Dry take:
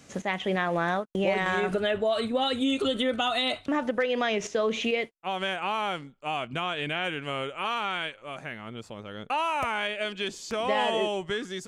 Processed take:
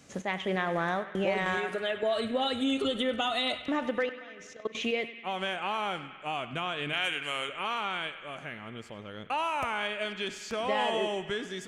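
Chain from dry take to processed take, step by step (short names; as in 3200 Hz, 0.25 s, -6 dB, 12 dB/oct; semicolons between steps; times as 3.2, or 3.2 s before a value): 1.57–2.03 HPF 470 Hz 6 dB/oct; 4.09–4.75 level quantiser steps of 24 dB; 6.93–7.49 tilt +3.5 dB/oct; on a send: narrowing echo 97 ms, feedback 80%, band-pass 2000 Hz, level -12.5 dB; on the sum: spring tank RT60 2.1 s, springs 48 ms, chirp 75 ms, DRR 17.5 dB; gain -3 dB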